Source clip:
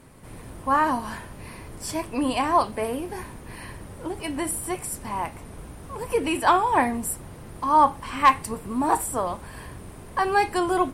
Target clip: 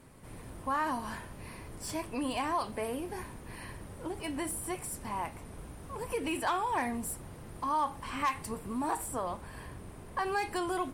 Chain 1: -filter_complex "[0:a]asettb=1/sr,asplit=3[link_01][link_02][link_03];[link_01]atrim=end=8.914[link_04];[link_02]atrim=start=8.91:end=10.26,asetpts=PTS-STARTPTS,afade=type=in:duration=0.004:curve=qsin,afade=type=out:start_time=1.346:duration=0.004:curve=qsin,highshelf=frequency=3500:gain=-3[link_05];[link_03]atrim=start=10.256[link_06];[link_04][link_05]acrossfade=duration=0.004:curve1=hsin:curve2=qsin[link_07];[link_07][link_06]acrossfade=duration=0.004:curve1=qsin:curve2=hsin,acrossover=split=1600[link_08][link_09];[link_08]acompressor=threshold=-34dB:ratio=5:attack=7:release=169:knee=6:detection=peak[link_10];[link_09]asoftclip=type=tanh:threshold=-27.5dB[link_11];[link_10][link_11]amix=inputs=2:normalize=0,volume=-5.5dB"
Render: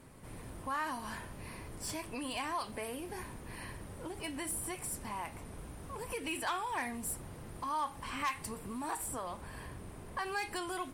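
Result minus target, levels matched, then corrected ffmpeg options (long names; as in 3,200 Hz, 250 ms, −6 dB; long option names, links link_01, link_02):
downward compressor: peak gain reduction +7.5 dB
-filter_complex "[0:a]asettb=1/sr,asplit=3[link_01][link_02][link_03];[link_01]atrim=end=8.914[link_04];[link_02]atrim=start=8.91:end=10.26,asetpts=PTS-STARTPTS,afade=type=in:duration=0.004:curve=qsin,afade=type=out:start_time=1.346:duration=0.004:curve=qsin,highshelf=frequency=3500:gain=-3[link_05];[link_03]atrim=start=10.256[link_06];[link_04][link_05]acrossfade=duration=0.004:curve1=hsin:curve2=qsin[link_07];[link_07][link_06]acrossfade=duration=0.004:curve1=qsin:curve2=hsin,acrossover=split=1600[link_08][link_09];[link_08]acompressor=threshold=-24.5dB:ratio=5:attack=7:release=169:knee=6:detection=peak[link_10];[link_09]asoftclip=type=tanh:threshold=-27.5dB[link_11];[link_10][link_11]amix=inputs=2:normalize=0,volume=-5.5dB"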